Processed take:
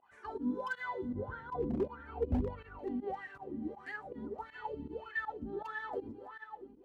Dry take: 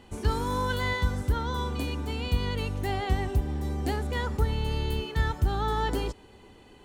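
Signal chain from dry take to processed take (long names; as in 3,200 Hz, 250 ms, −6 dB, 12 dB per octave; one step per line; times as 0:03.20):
feedback delay that plays each chunk backwards 339 ms, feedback 51%, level −9.5 dB
LFO wah 1.6 Hz 250–1,800 Hz, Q 11
0:01.13–0:02.79: spectral tilt −4.5 dB per octave
hard clipping −33 dBFS, distortion −14 dB
dynamic equaliser 1,300 Hz, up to −4 dB, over −54 dBFS, Q 1.7
flanger 0.41 Hz, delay 0.7 ms, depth 8.5 ms, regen +27%
fake sidechain pumping 160 BPM, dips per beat 1, −18 dB, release 83 ms
level +10 dB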